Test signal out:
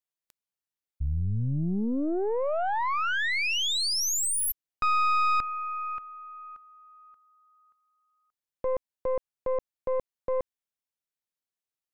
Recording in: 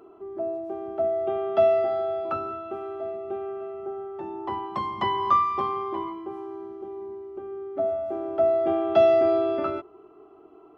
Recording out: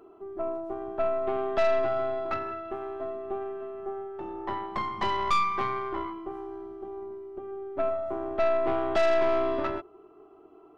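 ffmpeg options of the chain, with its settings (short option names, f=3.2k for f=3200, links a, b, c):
-af "aeval=exprs='(tanh(14.1*val(0)+0.75)-tanh(0.75))/14.1':c=same,volume=2dB"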